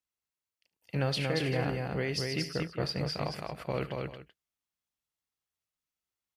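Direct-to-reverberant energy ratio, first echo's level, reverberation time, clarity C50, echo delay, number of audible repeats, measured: none, -16.0 dB, none, none, 73 ms, 3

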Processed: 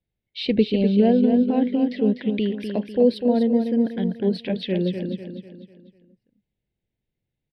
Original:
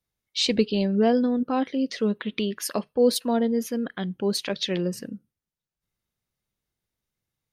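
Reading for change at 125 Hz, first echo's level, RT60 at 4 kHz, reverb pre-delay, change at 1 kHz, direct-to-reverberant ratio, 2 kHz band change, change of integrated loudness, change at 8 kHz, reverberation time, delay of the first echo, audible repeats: +5.0 dB, -7.0 dB, none, none, -2.0 dB, none, -2.5 dB, +3.5 dB, under -25 dB, none, 0.248 s, 4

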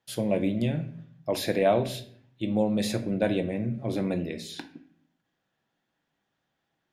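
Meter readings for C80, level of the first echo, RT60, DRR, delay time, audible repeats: 17.0 dB, none, 0.60 s, 7.5 dB, none, none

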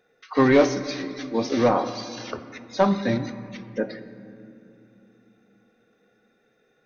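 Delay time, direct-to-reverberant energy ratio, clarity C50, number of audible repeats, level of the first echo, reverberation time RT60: none, 10.5 dB, 12.0 dB, none, none, 2.8 s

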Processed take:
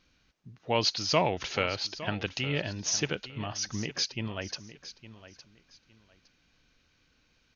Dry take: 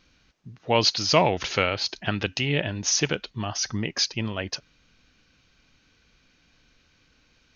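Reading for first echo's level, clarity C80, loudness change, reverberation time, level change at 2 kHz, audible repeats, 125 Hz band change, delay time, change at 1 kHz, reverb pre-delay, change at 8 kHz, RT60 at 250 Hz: -15.0 dB, none, -6.0 dB, none, -6.0 dB, 2, -6.0 dB, 0.861 s, -6.0 dB, none, n/a, none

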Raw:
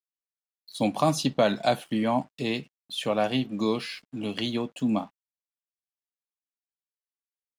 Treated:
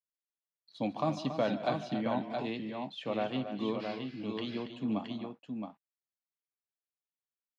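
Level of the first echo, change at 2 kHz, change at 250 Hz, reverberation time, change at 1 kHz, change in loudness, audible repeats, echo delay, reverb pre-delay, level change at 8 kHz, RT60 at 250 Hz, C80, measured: -15.0 dB, -8.5 dB, -6.5 dB, none, -7.5 dB, -8.0 dB, 4, 0.147 s, none, under -20 dB, none, none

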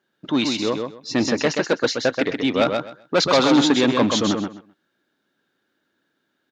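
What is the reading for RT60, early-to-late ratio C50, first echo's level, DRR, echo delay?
none, none, -5.0 dB, none, 0.129 s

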